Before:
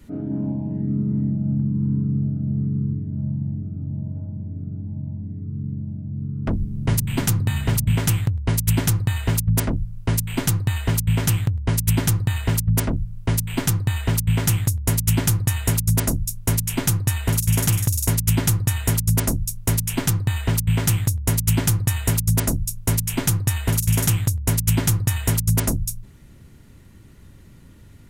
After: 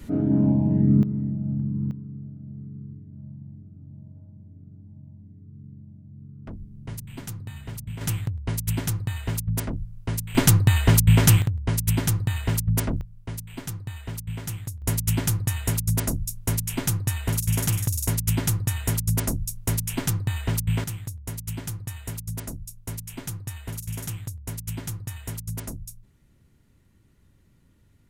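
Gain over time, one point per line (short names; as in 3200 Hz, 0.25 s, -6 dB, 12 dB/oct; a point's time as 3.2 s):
+5.5 dB
from 1.03 s -5 dB
from 1.91 s -15.5 dB
from 8.01 s -7 dB
from 10.35 s +4 dB
from 11.42 s -3.5 dB
from 13.01 s -13 dB
from 14.82 s -4.5 dB
from 20.84 s -13.5 dB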